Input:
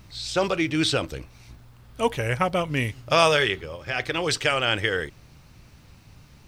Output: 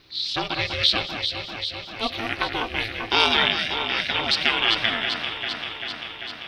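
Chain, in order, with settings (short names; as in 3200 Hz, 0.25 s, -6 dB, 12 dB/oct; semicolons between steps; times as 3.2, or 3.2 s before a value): tilt +2.5 dB/oct; ring modulator 220 Hz; resonant high shelf 5600 Hz -12 dB, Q 3; echo with dull and thin repeats by turns 0.196 s, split 2500 Hz, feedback 85%, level -5.5 dB; gain -1 dB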